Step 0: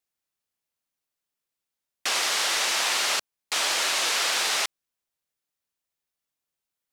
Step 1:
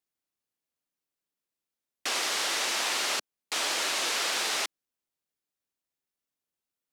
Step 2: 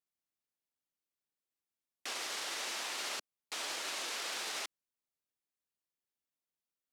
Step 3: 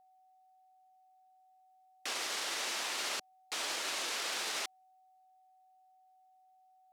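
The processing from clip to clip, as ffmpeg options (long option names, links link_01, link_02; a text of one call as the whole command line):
ffmpeg -i in.wav -af "equalizer=frequency=290:width=0.92:gain=6,volume=-4.5dB" out.wav
ffmpeg -i in.wav -af "alimiter=limit=-23.5dB:level=0:latency=1,volume=-6.5dB" out.wav
ffmpeg -i in.wav -af "aeval=exprs='val(0)+0.000501*sin(2*PI*750*n/s)':channel_layout=same,volume=2.5dB" out.wav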